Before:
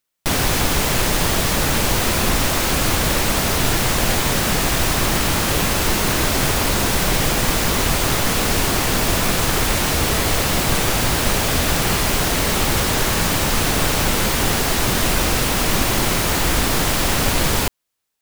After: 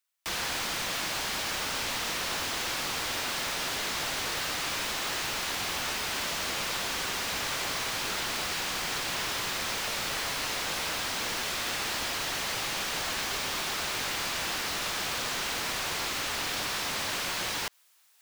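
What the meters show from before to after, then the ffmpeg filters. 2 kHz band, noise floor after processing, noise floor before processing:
−9.5 dB, −33 dBFS, −20 dBFS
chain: -filter_complex "[0:a]highpass=840,areverse,acompressor=mode=upward:threshold=-42dB:ratio=2.5,areverse,aeval=exprs='(mod(7.08*val(0)+1,2)-1)/7.08':channel_layout=same,acrossover=split=6100[link_01][link_02];[link_02]acompressor=threshold=-36dB:ratio=4:attack=1:release=60[link_03];[link_01][link_03]amix=inputs=2:normalize=0,volume=-5dB"

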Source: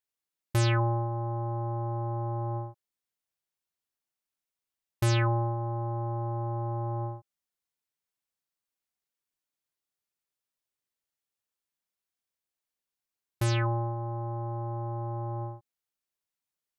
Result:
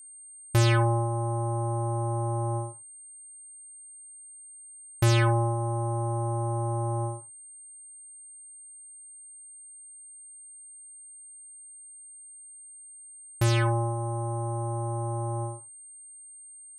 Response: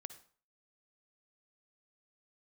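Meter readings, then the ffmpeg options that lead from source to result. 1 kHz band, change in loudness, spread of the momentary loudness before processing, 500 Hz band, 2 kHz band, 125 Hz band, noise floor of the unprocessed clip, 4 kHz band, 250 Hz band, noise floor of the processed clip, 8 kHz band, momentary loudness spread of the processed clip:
+3.0 dB, +3.5 dB, 10 LU, +4.0 dB, +4.0 dB, +3.0 dB, below −85 dBFS, +4.0 dB, +4.0 dB, −48 dBFS, +11.5 dB, 20 LU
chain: -filter_complex "[0:a]acontrast=30,aeval=exprs='val(0)+0.00631*sin(2*PI*8700*n/s)':channel_layout=same[link_01];[1:a]atrim=start_sample=2205,atrim=end_sample=3969[link_02];[link_01][link_02]afir=irnorm=-1:irlink=0,volume=4dB"

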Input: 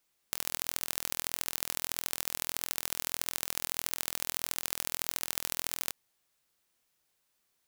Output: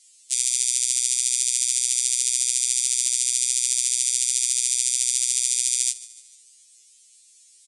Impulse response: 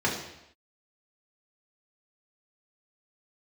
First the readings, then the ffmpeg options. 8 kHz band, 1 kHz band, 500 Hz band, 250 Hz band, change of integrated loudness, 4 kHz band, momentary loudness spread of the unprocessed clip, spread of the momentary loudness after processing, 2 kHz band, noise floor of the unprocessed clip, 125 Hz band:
+19.0 dB, below −15 dB, below −10 dB, below −10 dB, +13.5 dB, +11.5 dB, 1 LU, 1 LU, +2.5 dB, −77 dBFS, below −15 dB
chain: -filter_complex "[0:a]equalizer=frequency=125:width_type=o:width=1:gain=9,equalizer=frequency=250:width_type=o:width=1:gain=-9,equalizer=frequency=500:width_type=o:width=1:gain=10,equalizer=frequency=1000:width_type=o:width=1:gain=-4,equalizer=frequency=8000:width_type=o:width=1:gain=11,alimiter=limit=-9dB:level=0:latency=1:release=368,afreqshift=-130,aecho=1:1:149|298|447|596:0.112|0.0561|0.0281|0.014,aexciter=amount=14.1:drive=3.4:freq=2100,asplit=2[link_01][link_02];[1:a]atrim=start_sample=2205,atrim=end_sample=4410,lowpass=frequency=1200:width=0.5412,lowpass=frequency=1200:width=1.3066[link_03];[link_02][link_03]afir=irnorm=-1:irlink=0,volume=-21.5dB[link_04];[link_01][link_04]amix=inputs=2:normalize=0,aresample=22050,aresample=44100,afftfilt=real='re*2.45*eq(mod(b,6),0)':imag='im*2.45*eq(mod(b,6),0)':win_size=2048:overlap=0.75,volume=-3.5dB"

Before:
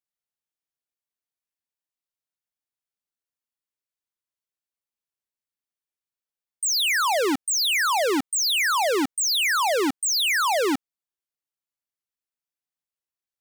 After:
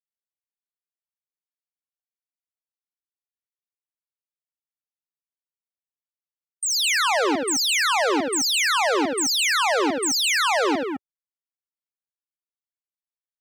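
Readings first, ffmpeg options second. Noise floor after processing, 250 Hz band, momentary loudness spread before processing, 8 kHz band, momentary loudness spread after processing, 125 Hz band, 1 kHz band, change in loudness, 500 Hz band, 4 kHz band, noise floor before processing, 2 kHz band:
below −85 dBFS, +1.5 dB, 4 LU, +1.0 dB, 5 LU, can't be measured, +1.5 dB, +1.0 dB, +1.5 dB, +1.0 dB, below −85 dBFS, +1.5 dB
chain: -af "acontrast=42,aecho=1:1:75.8|209.9:0.447|0.562,afftdn=noise_reduction=23:noise_floor=-29,volume=-6dB"

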